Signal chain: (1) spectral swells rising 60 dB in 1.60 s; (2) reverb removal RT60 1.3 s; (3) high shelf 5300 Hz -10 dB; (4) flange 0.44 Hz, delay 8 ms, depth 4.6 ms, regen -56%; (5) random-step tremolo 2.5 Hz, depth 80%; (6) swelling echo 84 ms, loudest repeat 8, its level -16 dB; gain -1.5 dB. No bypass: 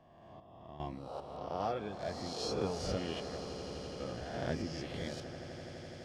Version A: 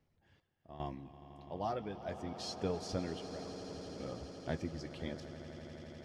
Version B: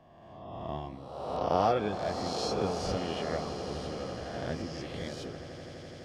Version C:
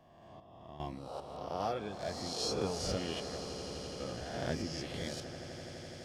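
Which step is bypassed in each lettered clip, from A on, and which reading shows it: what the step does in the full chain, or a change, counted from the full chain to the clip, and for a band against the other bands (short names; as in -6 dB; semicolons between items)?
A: 1, loudness change -2.5 LU; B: 5, momentary loudness spread change +5 LU; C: 3, 8 kHz band +6.0 dB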